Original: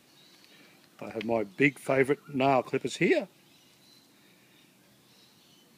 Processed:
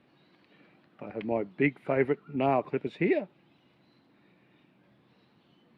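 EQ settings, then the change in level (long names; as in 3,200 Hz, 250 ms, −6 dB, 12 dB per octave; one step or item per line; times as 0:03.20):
high-frequency loss of the air 450 metres
0.0 dB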